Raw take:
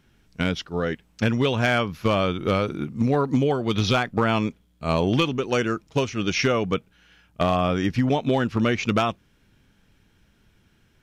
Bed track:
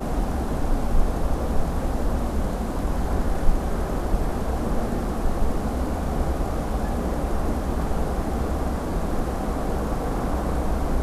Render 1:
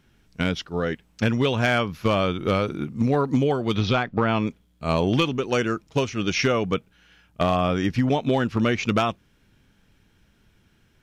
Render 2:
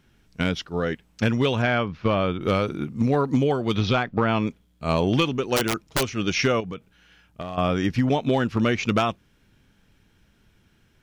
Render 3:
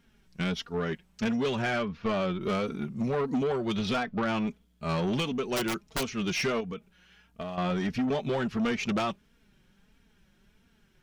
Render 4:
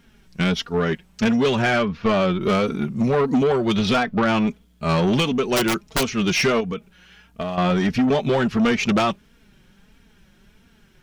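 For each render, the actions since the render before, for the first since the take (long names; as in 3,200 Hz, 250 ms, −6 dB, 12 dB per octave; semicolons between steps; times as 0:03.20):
0:03.78–0:04.47: high-frequency loss of the air 140 metres
0:01.62–0:02.41: high-frequency loss of the air 200 metres; 0:05.56–0:06.06: wrap-around overflow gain 15.5 dB; 0:06.60–0:07.58: downward compressor 5 to 1, threshold −30 dBFS
flanger 1.5 Hz, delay 4.2 ms, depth 1.4 ms, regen +12%; soft clipping −23.5 dBFS, distortion −13 dB
level +9.5 dB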